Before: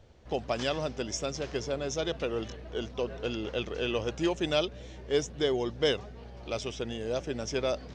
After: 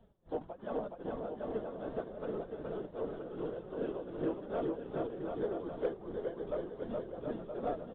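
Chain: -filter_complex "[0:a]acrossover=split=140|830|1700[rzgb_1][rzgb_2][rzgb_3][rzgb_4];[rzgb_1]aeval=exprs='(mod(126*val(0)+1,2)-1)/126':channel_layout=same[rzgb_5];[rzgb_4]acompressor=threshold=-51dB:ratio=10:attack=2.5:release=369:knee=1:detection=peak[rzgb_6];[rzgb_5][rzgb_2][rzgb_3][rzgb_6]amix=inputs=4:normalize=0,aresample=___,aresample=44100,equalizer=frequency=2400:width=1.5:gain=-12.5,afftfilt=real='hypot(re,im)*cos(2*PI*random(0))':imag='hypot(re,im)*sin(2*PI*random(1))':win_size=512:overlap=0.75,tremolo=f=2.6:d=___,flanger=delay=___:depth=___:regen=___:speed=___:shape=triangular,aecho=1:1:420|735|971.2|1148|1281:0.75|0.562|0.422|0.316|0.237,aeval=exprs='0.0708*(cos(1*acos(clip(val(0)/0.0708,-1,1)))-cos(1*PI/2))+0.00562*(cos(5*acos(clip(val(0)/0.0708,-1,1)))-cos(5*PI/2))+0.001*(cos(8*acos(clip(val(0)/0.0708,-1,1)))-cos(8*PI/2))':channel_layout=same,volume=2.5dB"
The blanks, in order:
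8000, 0.83, 4.2, 2.5, 37, 1.3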